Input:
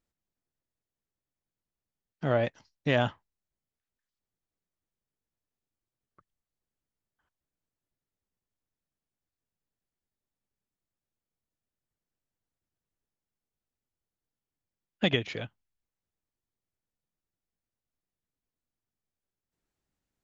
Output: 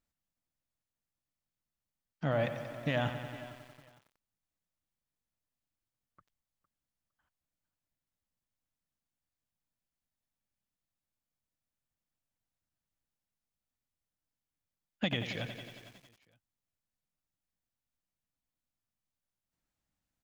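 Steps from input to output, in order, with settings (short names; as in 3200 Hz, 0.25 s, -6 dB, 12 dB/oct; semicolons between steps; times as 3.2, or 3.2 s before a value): bell 400 Hz -10.5 dB 0.37 oct; limiter -18 dBFS, peak gain reduction 7 dB; on a send: feedback echo 0.458 s, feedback 21%, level -18 dB; on the sum: lo-fi delay 91 ms, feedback 80%, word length 9-bit, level -10.5 dB; gain -1.5 dB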